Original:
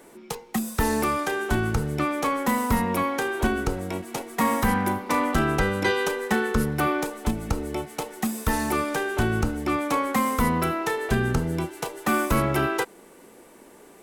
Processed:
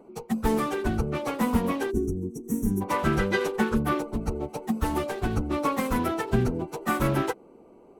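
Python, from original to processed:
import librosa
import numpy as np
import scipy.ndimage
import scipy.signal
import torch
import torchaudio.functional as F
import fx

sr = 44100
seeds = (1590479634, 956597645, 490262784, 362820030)

y = fx.wiener(x, sr, points=25)
y = fx.stretch_vocoder_free(y, sr, factor=0.57)
y = fx.spec_box(y, sr, start_s=1.91, length_s=0.91, low_hz=460.0, high_hz=5500.0, gain_db=-26)
y = y * librosa.db_to_amplitude(3.0)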